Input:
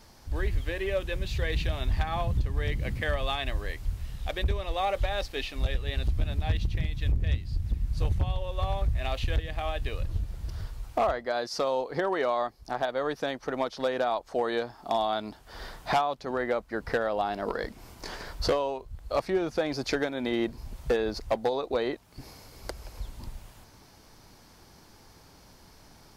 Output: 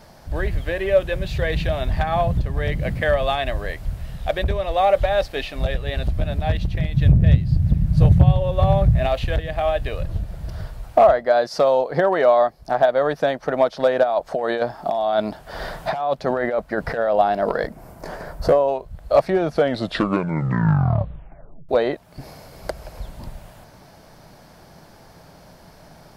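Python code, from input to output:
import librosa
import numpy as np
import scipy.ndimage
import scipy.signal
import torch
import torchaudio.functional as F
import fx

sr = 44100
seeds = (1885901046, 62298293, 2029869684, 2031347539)

y = fx.peak_eq(x, sr, hz=140.0, db=12.5, octaves=1.9, at=(6.94, 9.07))
y = fx.over_compress(y, sr, threshold_db=-32.0, ratio=-1.0, at=(14.03, 17.16))
y = fx.peak_eq(y, sr, hz=3600.0, db=-10.5, octaves=1.8, at=(17.67, 18.68))
y = fx.edit(y, sr, fx.tape_stop(start_s=19.43, length_s=2.26), tone=tone)
y = fx.graphic_eq_15(y, sr, hz=(160, 630, 1600, 6300), db=(9, 11, 4, -3))
y = y * librosa.db_to_amplitude(4.0)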